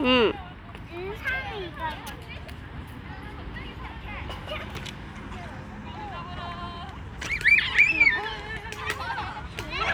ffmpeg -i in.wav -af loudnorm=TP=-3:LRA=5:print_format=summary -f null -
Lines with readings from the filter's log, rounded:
Input Integrated:    -23.4 LUFS
Input True Peak:      -6.9 dBTP
Input LRA:            15.3 LU
Input Threshold:     -35.7 LUFS